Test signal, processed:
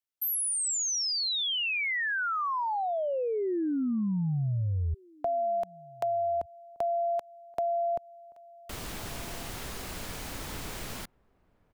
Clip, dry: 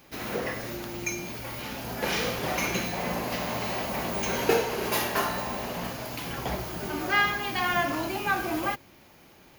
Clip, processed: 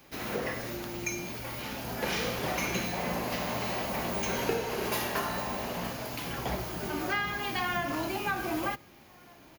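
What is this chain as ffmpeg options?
-filter_complex "[0:a]asplit=2[a][b];[b]adelay=1516,volume=-27dB,highshelf=f=4k:g=-34.1[c];[a][c]amix=inputs=2:normalize=0,acrossover=split=230[d][e];[e]acompressor=threshold=-26dB:ratio=6[f];[d][f]amix=inputs=2:normalize=0,volume=-1.5dB"

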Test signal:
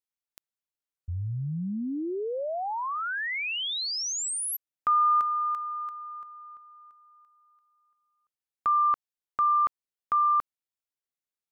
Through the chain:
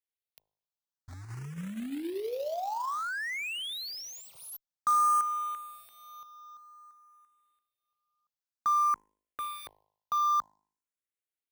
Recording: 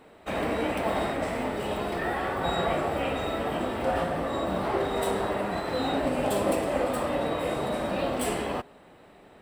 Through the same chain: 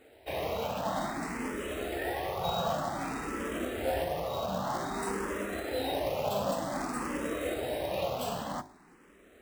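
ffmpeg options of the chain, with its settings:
-filter_complex "[0:a]bandreject=f=52.09:t=h:w=4,bandreject=f=104.18:t=h:w=4,bandreject=f=156.27:t=h:w=4,bandreject=f=208.36:t=h:w=4,bandreject=f=260.45:t=h:w=4,bandreject=f=312.54:t=h:w=4,bandreject=f=364.63:t=h:w=4,bandreject=f=416.72:t=h:w=4,bandreject=f=468.81:t=h:w=4,bandreject=f=520.9:t=h:w=4,bandreject=f=572.99:t=h:w=4,bandreject=f=625.08:t=h:w=4,bandreject=f=677.17:t=h:w=4,bandreject=f=729.26:t=h:w=4,bandreject=f=781.35:t=h:w=4,bandreject=f=833.44:t=h:w=4,bandreject=f=885.53:t=h:w=4,bandreject=f=937.62:t=h:w=4,bandreject=f=989.71:t=h:w=4,bandreject=f=1.0418k:t=h:w=4,acrusher=bits=3:mode=log:mix=0:aa=0.000001,asplit=2[a][b];[b]afreqshift=0.53[c];[a][c]amix=inputs=2:normalize=1,volume=-2dB"

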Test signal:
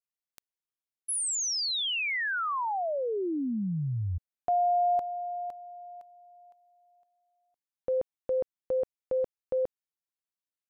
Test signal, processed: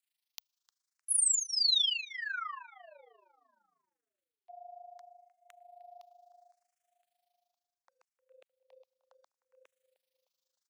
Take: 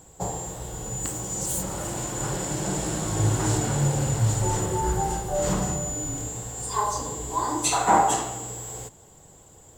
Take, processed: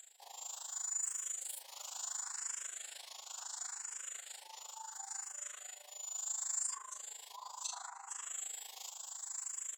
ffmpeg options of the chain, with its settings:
-filter_complex "[0:a]highshelf=f=2.2k:g=-11.5,acrossover=split=200|1200[a][b][c];[a]acompressor=threshold=-41dB:ratio=2[d];[b]acompressor=threshold=-37dB:ratio=1.5[e];[c]acompressor=threshold=-43dB:ratio=8[f];[d][e][f]amix=inputs=3:normalize=0,alimiter=level_in=3dB:limit=-24dB:level=0:latency=1:release=24,volume=-3dB,areverse,acompressor=threshold=-45dB:ratio=16:attack=1.9:release=512:knee=6:detection=rms,areverse,crystalizer=i=2:c=0,tremolo=f=26:d=0.824,acrossover=split=870|6300[g][h][i];[g]acrusher=bits=3:mix=0:aa=0.5[j];[h]crystalizer=i=7.5:c=0[k];[j][k][i]amix=inputs=3:normalize=0,asplit=2[l][m];[m]adelay=306,lowpass=f=2.6k:p=1,volume=-17dB,asplit=2[n][o];[o]adelay=306,lowpass=f=2.6k:p=1,volume=0.45,asplit=2[p][q];[q]adelay=306,lowpass=f=2.6k:p=1,volume=0.45,asplit=2[r][s];[s]adelay=306,lowpass=f=2.6k:p=1,volume=0.45[t];[l][n][p][r][t]amix=inputs=5:normalize=0,asplit=2[u][v];[v]afreqshift=0.71[w];[u][w]amix=inputs=2:normalize=1,volume=9dB"

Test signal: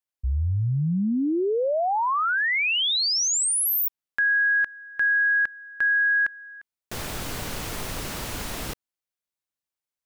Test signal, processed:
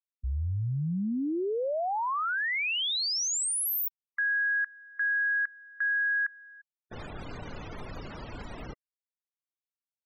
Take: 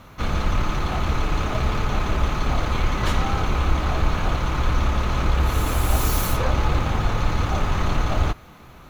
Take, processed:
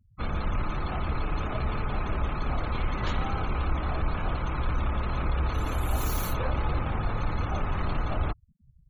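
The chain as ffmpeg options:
-af "aeval=exprs='0.473*(cos(1*acos(clip(val(0)/0.473,-1,1)))-cos(1*PI/2))+0.0266*(cos(5*acos(clip(val(0)/0.473,-1,1)))-cos(5*PI/2))':c=same,aeval=exprs='sgn(val(0))*max(abs(val(0))-0.00251,0)':c=same,afftfilt=real='re*gte(hypot(re,im),0.0316)':imag='im*gte(hypot(re,im),0.0316)':win_size=1024:overlap=0.75,volume=-8dB"

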